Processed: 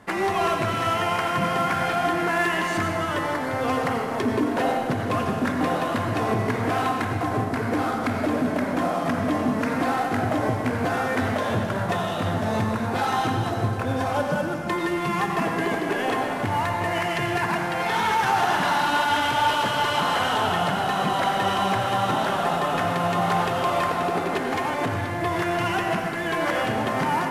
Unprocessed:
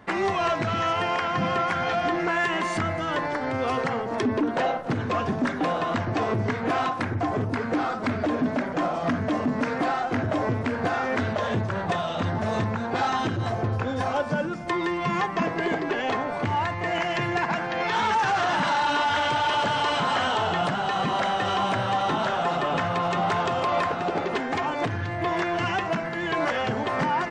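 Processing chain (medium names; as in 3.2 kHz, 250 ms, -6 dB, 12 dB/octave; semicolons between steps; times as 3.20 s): CVSD coder 64 kbps; on a send: reverberation RT60 1.8 s, pre-delay 77 ms, DRR 3 dB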